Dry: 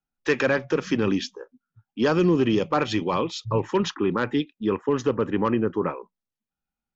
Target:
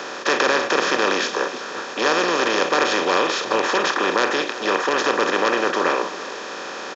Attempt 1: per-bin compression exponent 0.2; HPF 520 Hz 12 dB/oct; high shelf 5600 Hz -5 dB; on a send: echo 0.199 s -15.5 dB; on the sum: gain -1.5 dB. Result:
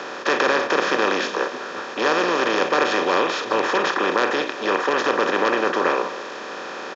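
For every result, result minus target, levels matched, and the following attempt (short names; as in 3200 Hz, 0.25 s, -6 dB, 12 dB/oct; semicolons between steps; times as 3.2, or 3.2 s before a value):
echo 0.144 s early; 8000 Hz band -5.5 dB
per-bin compression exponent 0.2; HPF 520 Hz 12 dB/oct; high shelf 5600 Hz -5 dB; on a send: echo 0.343 s -15.5 dB; on the sum: gain -1.5 dB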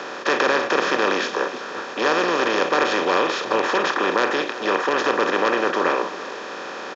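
8000 Hz band -5.5 dB
per-bin compression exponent 0.2; HPF 520 Hz 12 dB/oct; high shelf 5600 Hz +6 dB; on a send: echo 0.343 s -15.5 dB; on the sum: gain -1.5 dB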